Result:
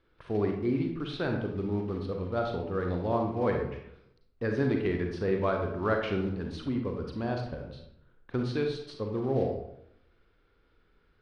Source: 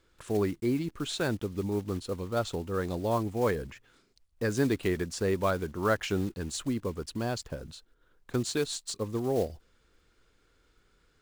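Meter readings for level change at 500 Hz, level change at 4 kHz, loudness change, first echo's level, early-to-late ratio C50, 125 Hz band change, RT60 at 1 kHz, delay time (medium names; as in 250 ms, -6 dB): +0.5 dB, -6.5 dB, 0.0 dB, no echo, 4.0 dB, +1.0 dB, 0.80 s, no echo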